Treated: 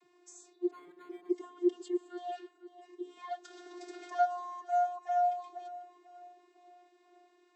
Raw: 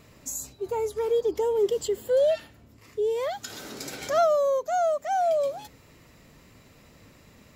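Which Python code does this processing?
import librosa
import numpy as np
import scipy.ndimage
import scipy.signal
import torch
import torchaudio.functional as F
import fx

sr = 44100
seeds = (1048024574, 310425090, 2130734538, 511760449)

p1 = fx.vocoder(x, sr, bands=32, carrier='saw', carrier_hz=355.0)
p2 = p1 + fx.echo_feedback(p1, sr, ms=494, feedback_pct=42, wet_db=-16.5, dry=0)
p3 = fx.resample_linear(p2, sr, factor=8, at=(0.71, 1.31))
y = p3 * librosa.db_to_amplitude(-8.5)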